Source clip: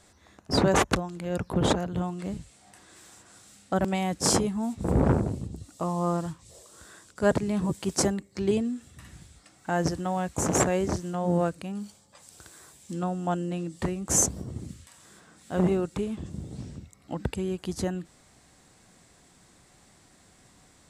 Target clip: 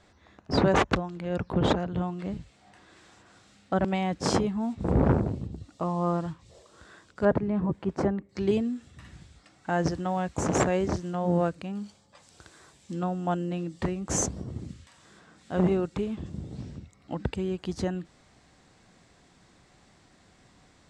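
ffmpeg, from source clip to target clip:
-af "asetnsamples=n=441:p=0,asendcmd='7.25 lowpass f 1600;8.29 lowpass f 5200',lowpass=4000"

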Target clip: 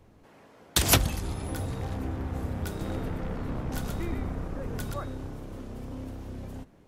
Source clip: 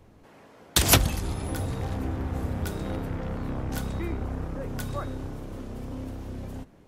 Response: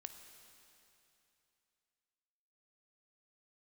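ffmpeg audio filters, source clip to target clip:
-filter_complex "[0:a]asettb=1/sr,asplit=3[s0][s1][s2];[s0]atrim=end=2.684[s3];[s1]atrim=start=2.68:end=4.94,asetpts=PTS-STARTPTS,afade=t=in:d=0.004:c=qsin,afade=t=out:st=2.256:d=0.004:c=qsin,asplit=5[s4][s5][s6][s7][s8];[s5]adelay=125,afreqshift=-77,volume=0.631[s9];[s6]adelay=250,afreqshift=-154,volume=0.188[s10];[s7]adelay=375,afreqshift=-231,volume=0.0569[s11];[s8]adelay=500,afreqshift=-308,volume=0.017[s12];[s4][s9][s10][s11][s12]amix=inputs=5:normalize=0,atrim=end_sample=99666[s13];[s2]atrim=start=4.936[s14];[s3][s13]acrossfade=d=0.004:c1=hsin:c2=qsin[s15];[s15][s14]acrossfade=d=0.004:c1=qsin:c2=hsin,volume=0.75"

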